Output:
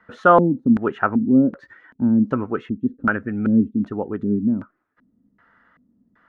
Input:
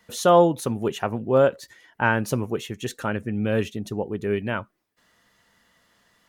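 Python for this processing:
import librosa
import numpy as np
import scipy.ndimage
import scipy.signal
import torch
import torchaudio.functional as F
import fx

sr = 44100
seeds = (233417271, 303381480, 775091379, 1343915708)

y = fx.small_body(x, sr, hz=(270.0, 1300.0), ring_ms=35, db=7)
y = fx.filter_lfo_lowpass(y, sr, shape='square', hz=1.3, low_hz=240.0, high_hz=1500.0, q=3.7)
y = fx.dynamic_eq(y, sr, hz=120.0, q=2.1, threshold_db=-34.0, ratio=4.0, max_db=-4)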